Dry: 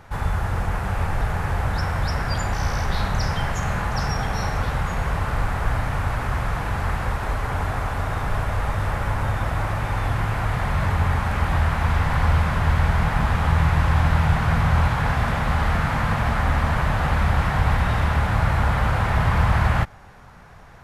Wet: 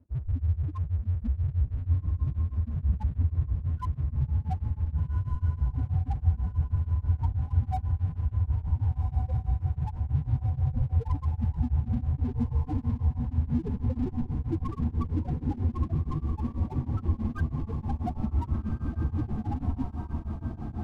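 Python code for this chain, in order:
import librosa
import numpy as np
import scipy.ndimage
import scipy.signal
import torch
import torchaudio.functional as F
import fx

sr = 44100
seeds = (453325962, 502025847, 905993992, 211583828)

p1 = scipy.signal.sosfilt(scipy.signal.butter(2, 69.0, 'highpass', fs=sr, output='sos'), x)
p2 = fx.peak_eq(p1, sr, hz=110.0, db=3.5, octaves=0.31)
p3 = fx.rider(p2, sr, range_db=3, speed_s=0.5)
p4 = p2 + (p3 * 10.0 ** (0.0 / 20.0))
p5 = fx.chorus_voices(p4, sr, voices=6, hz=0.12, base_ms=14, depth_ms=2.2, mix_pct=35)
p6 = (np.mod(10.0 ** (13.5 / 20.0) * p5 + 1.0, 2.0) - 1.0) / 10.0 ** (13.5 / 20.0)
p7 = fx.spec_topn(p6, sr, count=1)
p8 = np.sign(p7) * np.maximum(np.abs(p7) - 10.0 ** (-53.0 / 20.0), 0.0)
p9 = p8 + fx.echo_diffused(p8, sr, ms=1568, feedback_pct=71, wet_db=-5.0, dry=0)
p10 = p9 * np.abs(np.cos(np.pi * 6.2 * np.arange(len(p9)) / sr))
y = p10 * 10.0 ** (6.0 / 20.0)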